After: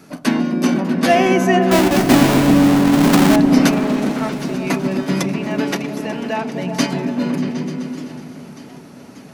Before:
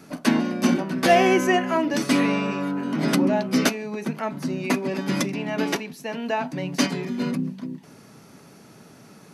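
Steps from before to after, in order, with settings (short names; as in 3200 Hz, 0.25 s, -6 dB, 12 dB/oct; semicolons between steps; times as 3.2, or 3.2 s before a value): 1.71–3.36 half-waves squared off; repeats that get brighter 0.127 s, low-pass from 200 Hz, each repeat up 1 oct, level 0 dB; warbling echo 0.593 s, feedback 75%, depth 190 cents, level -20 dB; gain +2.5 dB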